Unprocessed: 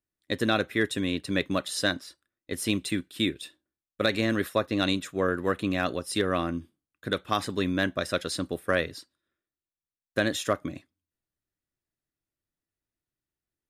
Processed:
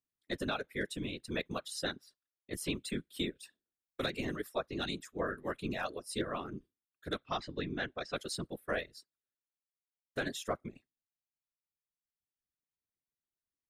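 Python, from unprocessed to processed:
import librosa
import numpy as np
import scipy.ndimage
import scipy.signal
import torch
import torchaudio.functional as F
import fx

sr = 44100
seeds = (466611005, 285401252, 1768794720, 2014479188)

y = fx.lowpass(x, sr, hz=5500.0, slope=24, at=(7.16, 8.15), fade=0.02)
y = fx.dereverb_blind(y, sr, rt60_s=1.5)
y = fx.rider(y, sr, range_db=4, speed_s=0.5)
y = fx.whisperise(y, sr, seeds[0])
y = fx.band_squash(y, sr, depth_pct=70, at=(2.53, 4.3))
y = y * librosa.db_to_amplitude(-8.5)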